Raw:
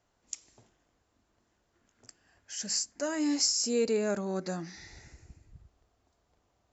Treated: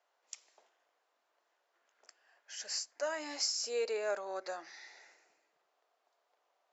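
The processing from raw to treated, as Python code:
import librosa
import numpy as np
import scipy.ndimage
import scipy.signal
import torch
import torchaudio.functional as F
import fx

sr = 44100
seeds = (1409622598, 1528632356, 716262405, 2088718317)

y = scipy.signal.sosfilt(scipy.signal.butter(4, 520.0, 'highpass', fs=sr, output='sos'), x)
y = fx.air_absorb(y, sr, metres=110.0)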